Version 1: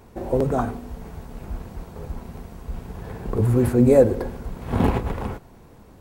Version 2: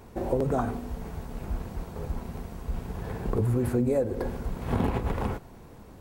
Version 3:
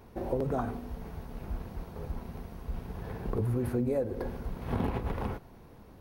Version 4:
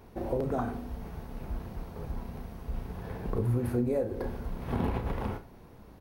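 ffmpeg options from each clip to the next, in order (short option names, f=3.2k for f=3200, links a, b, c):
-af "acompressor=threshold=-22dB:ratio=8"
-af "equalizer=f=7.6k:t=o:w=0.33:g=-12,volume=-4.5dB"
-af "aecho=1:1:33|68:0.335|0.188"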